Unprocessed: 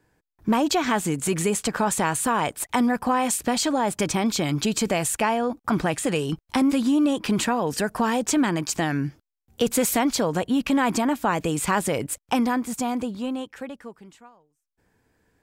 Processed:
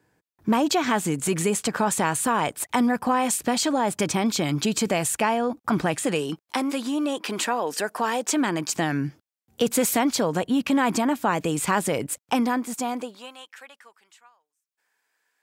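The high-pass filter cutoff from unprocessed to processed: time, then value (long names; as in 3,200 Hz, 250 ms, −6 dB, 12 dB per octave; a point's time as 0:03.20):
0:05.88 92 Hz
0:06.56 380 Hz
0:08.24 380 Hz
0:08.81 110 Hz
0:12.09 110 Hz
0:12.98 300 Hz
0:13.34 1,200 Hz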